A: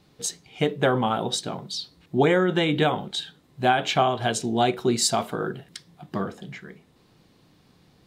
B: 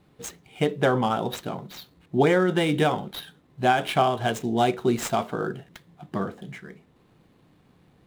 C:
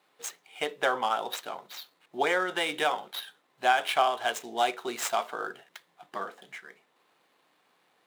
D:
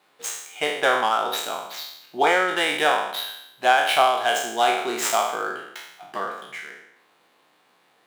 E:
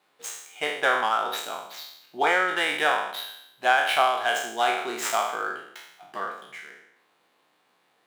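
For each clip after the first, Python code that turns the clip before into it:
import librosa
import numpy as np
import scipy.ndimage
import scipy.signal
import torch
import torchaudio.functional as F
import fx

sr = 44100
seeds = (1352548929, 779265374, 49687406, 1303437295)

y1 = scipy.ndimage.median_filter(x, 9, mode='constant')
y2 = scipy.signal.sosfilt(scipy.signal.butter(2, 740.0, 'highpass', fs=sr, output='sos'), y1)
y3 = fx.spec_trails(y2, sr, decay_s=0.79)
y3 = y3 * 10.0 ** (4.5 / 20.0)
y4 = fx.dynamic_eq(y3, sr, hz=1600.0, q=0.93, threshold_db=-32.0, ratio=4.0, max_db=5)
y4 = y4 * 10.0 ** (-5.5 / 20.0)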